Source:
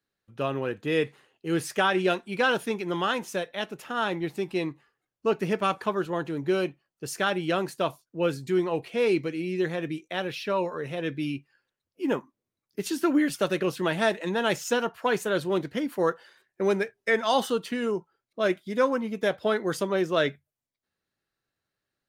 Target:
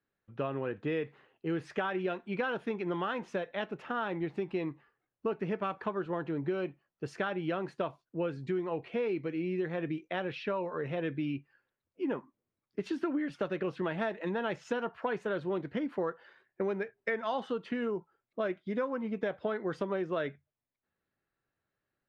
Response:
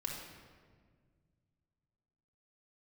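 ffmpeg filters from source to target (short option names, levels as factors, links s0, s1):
-af "lowpass=2300,acompressor=threshold=0.0316:ratio=6"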